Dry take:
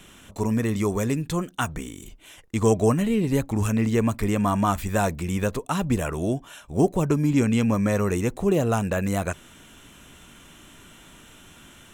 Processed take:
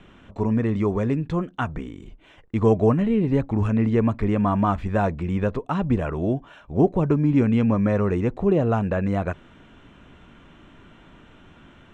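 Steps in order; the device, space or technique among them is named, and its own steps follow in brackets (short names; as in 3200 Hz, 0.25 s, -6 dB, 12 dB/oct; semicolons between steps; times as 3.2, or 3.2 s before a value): phone in a pocket (LPF 3500 Hz 12 dB/oct; high shelf 2400 Hz -11 dB); gain +2 dB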